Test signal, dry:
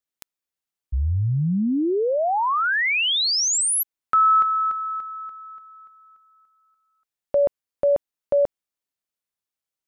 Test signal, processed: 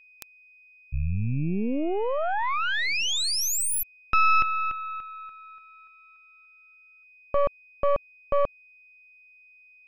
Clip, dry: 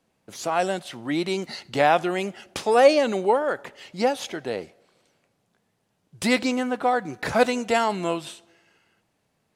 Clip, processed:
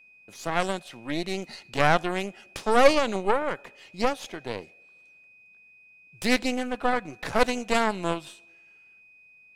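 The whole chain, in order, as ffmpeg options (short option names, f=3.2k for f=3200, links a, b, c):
-af "aeval=exprs='val(0)+0.00501*sin(2*PI*2500*n/s)':c=same,aeval=exprs='0.631*(cos(1*acos(clip(val(0)/0.631,-1,1)))-cos(1*PI/2))+0.112*(cos(3*acos(clip(val(0)/0.631,-1,1)))-cos(3*PI/2))+0.0794*(cos(6*acos(clip(val(0)/0.631,-1,1)))-cos(6*PI/2))':c=same"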